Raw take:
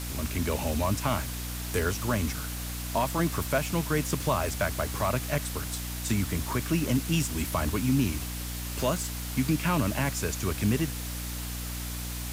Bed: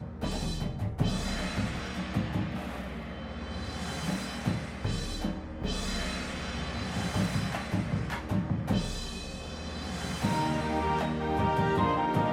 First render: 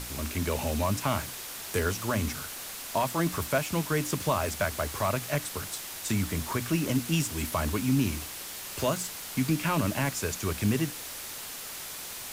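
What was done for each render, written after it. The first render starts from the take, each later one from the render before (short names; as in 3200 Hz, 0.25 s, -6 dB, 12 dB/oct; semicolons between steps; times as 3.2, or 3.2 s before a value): notches 60/120/180/240/300 Hz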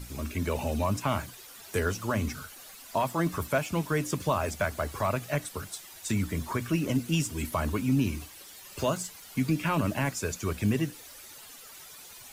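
denoiser 12 dB, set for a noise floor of -40 dBFS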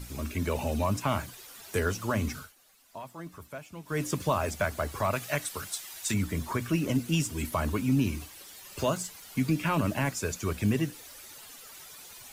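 2.36–4.02 dip -14.5 dB, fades 0.17 s; 5.13–6.14 tilt shelf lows -4.5 dB, about 740 Hz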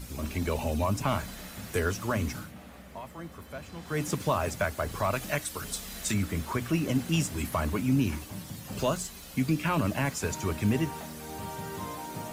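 add bed -11.5 dB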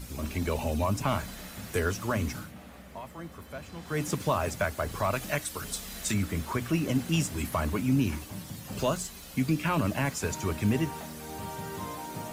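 nothing audible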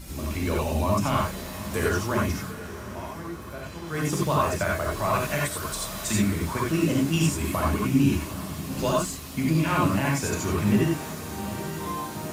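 diffused feedback echo 0.799 s, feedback 44%, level -13.5 dB; non-linear reverb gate 0.11 s rising, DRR -2.5 dB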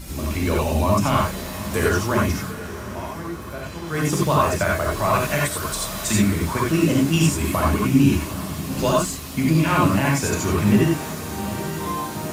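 gain +5 dB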